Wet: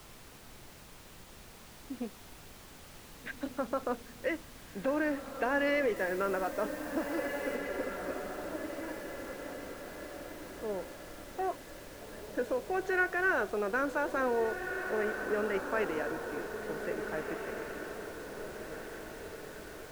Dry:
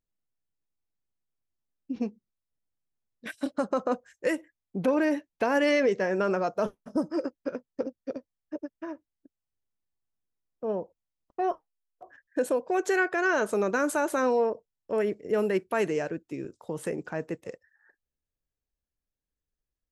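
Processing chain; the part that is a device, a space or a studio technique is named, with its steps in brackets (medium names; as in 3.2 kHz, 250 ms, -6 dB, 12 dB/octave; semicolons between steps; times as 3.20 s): horn gramophone (band-pass 210–3600 Hz; peaking EQ 1.6 kHz +5 dB 0.77 oct; wow and flutter; pink noise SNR 15 dB); 5.96–7.56 s: treble shelf 7.6 kHz +7.5 dB; echo that smears into a reverb 1758 ms, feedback 48%, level -6.5 dB; trim -6.5 dB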